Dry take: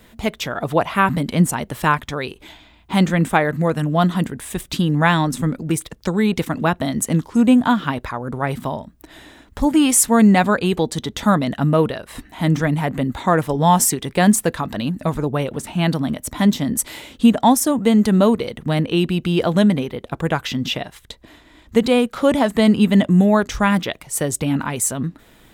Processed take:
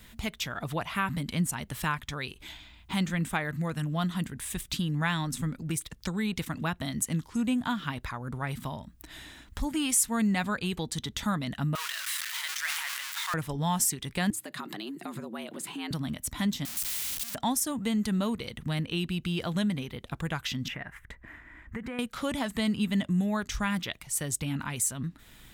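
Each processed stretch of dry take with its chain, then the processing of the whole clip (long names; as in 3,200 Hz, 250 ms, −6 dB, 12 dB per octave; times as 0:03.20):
0:11.75–0:13.34: converter with a step at zero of −21 dBFS + high-pass filter 1,200 Hz 24 dB per octave + level that may fall only so fast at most 28 dB per second
0:14.30–0:15.91: notch filter 5,700 Hz, Q 7.5 + downward compressor 3 to 1, threshold −25 dBFS + frequency shifter +100 Hz
0:16.65–0:17.35: sign of each sample alone + first-order pre-emphasis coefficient 0.8 + every bin compressed towards the loudest bin 2 to 1
0:20.68–0:21.99: high shelf with overshoot 2,700 Hz −13.5 dB, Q 3 + downward compressor 3 to 1, threshold −25 dBFS
whole clip: parametric band 490 Hz −12 dB 2.4 octaves; downward compressor 1.5 to 1, threshold −39 dBFS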